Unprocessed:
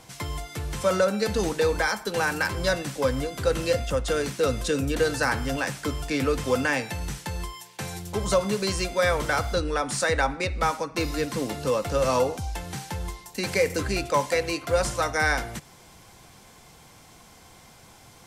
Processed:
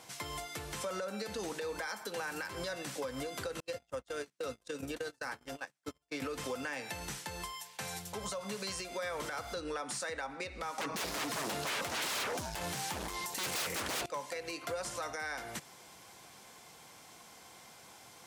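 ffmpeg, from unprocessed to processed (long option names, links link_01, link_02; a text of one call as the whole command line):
ffmpeg -i in.wav -filter_complex "[0:a]asettb=1/sr,asplit=3[link_01][link_02][link_03];[link_01]atrim=end=3.604[link_04];[link_02]atrim=start=3.6:end=6.22,asetpts=PTS-STARTPTS,afade=type=in:duration=0.004:curve=qsin,afade=type=out:start_time=2.616:duration=0.004:curve=qsin,agate=range=-45dB:threshold=-26dB:ratio=16:release=100:detection=peak[link_05];[link_03]atrim=start=6.216[link_06];[link_04][link_05]acrossfade=duration=0.004:curve1=hsin:curve2=qsin[link_07];[link_07][link_06]acrossfade=duration=0.004:curve1=qsin:curve2=hsin,asettb=1/sr,asplit=3[link_08][link_09][link_10];[link_08]atrim=end=7.424[link_11];[link_09]atrim=start=7.42:end=8.8,asetpts=PTS-STARTPTS,afade=type=in:duration=0.004:curve=qsin,afade=type=out:start_time=1.376:duration=0.004:curve=qsin,equalizer=frequency=350:width=4.8:gain=-10[link_12];[link_10]atrim=start=8.796[link_13];[link_11][link_12]acrossfade=duration=0.004:curve1=hsin:curve2=qsin[link_14];[link_14][link_13]acrossfade=duration=0.004:curve1=qsin:curve2=hsin,asettb=1/sr,asplit=3[link_15][link_16][link_17];[link_15]atrim=end=10.784[link_18];[link_16]atrim=start=10.78:end=14.06,asetpts=PTS-STARTPTS,afade=type=in:duration=0.004:curve=qsin,afade=type=out:start_time=3.276:duration=0.004:curve=qsin,aeval=exprs='0.282*sin(PI/2*8.91*val(0)/0.282)':channel_layout=same[link_19];[link_17]atrim=start=14.056[link_20];[link_18][link_19]acrossfade=duration=0.004:curve1=hsin:curve2=qsin[link_21];[link_21][link_20]acrossfade=duration=0.004:curve1=qsin:curve2=hsin,highpass=frequency=370:poles=1,acompressor=threshold=-29dB:ratio=6,alimiter=level_in=2.5dB:limit=-24dB:level=0:latency=1:release=127,volume=-2.5dB,volume=-2.5dB" out.wav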